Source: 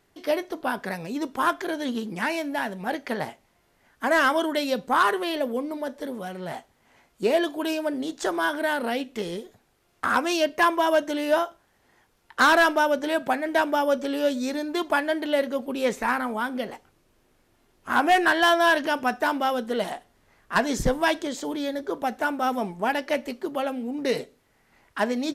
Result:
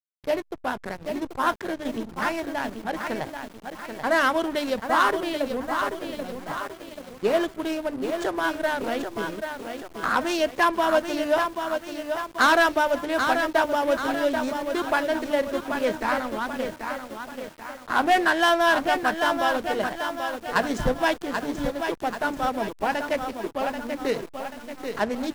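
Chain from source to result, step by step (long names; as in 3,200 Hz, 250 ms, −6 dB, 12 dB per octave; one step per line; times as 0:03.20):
mains-hum notches 60/120/180/240/300 Hz
slack as between gear wheels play −27 dBFS
feedback echo at a low word length 785 ms, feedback 55%, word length 7 bits, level −6 dB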